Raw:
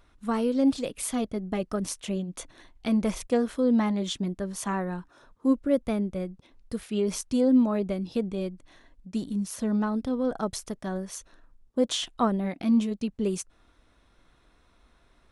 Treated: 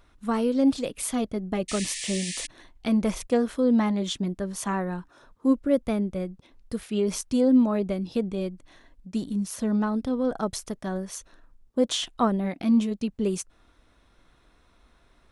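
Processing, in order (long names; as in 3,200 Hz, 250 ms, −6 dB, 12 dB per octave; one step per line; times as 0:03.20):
sound drawn into the spectrogram noise, 0:01.68–0:02.47, 1,700–10,000 Hz −36 dBFS
level +1.5 dB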